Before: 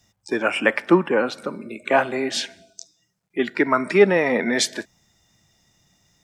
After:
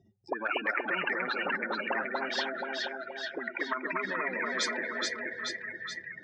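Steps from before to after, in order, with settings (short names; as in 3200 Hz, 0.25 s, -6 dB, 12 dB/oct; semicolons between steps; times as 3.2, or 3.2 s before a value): spectral contrast raised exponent 2.6; in parallel at +2.5 dB: limiter -16.5 dBFS, peak gain reduction 10.5 dB; on the sum: auto-wah 390–1800 Hz, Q 18, up, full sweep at -11 dBFS; split-band echo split 1600 Hz, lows 0.239 s, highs 0.427 s, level -4.5 dB; spectral compressor 4:1; gain -2.5 dB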